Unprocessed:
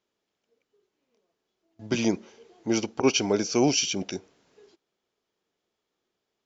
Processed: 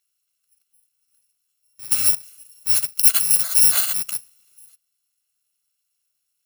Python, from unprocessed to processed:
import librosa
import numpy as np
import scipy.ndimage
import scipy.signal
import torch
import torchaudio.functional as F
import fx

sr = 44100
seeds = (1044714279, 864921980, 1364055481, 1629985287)

y = fx.bit_reversed(x, sr, seeds[0], block=128)
y = fx.tilt_shelf(y, sr, db=-9.5, hz=1200.0)
y = F.gain(torch.from_numpy(y), -2.0).numpy()